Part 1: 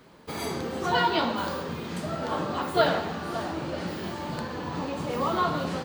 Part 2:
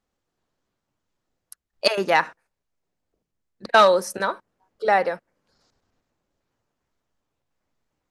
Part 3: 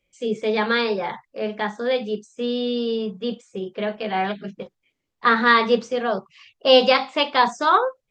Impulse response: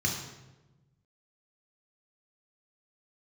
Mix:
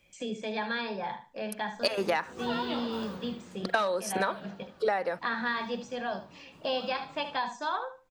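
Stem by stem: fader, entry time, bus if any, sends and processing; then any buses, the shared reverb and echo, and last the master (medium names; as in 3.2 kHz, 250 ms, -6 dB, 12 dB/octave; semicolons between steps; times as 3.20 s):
3.18 s -10.5 dB -> 3.80 s -23.5 dB, 1.55 s, no send, no echo send, vibrato 4.8 Hz 96 cents
+1.5 dB, 0.00 s, no send, no echo send, none
-12.5 dB, 0.00 s, no send, echo send -11.5 dB, comb 1.2 ms, depth 49%; three bands compressed up and down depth 70%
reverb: none
echo: feedback delay 75 ms, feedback 19%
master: compression 20:1, threshold -24 dBFS, peak gain reduction 16.5 dB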